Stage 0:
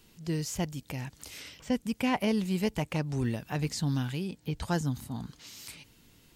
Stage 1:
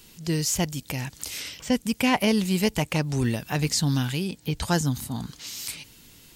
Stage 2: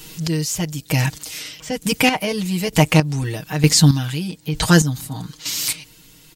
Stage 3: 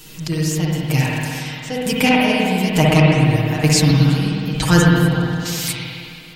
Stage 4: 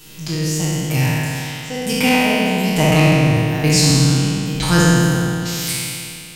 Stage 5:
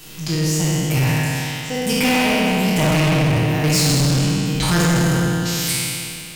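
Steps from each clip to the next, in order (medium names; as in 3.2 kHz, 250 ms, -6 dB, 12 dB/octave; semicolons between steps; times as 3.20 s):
treble shelf 2.7 kHz +7.5 dB; trim +5.5 dB
comb 6.4 ms, depth 95%; in parallel at -3 dB: peak limiter -18.5 dBFS, peak gain reduction 10.5 dB; on the sum: square tremolo 1.1 Hz, depth 65%, duty 30%; trim +5 dB
spring tank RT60 2.5 s, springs 52/60 ms, chirp 65 ms, DRR -4.5 dB; trim -2.5 dB
spectral sustain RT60 2.00 s; trim -3 dB
overload inside the chain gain 15.5 dB; crackle 290 per s -31 dBFS; trim +1.5 dB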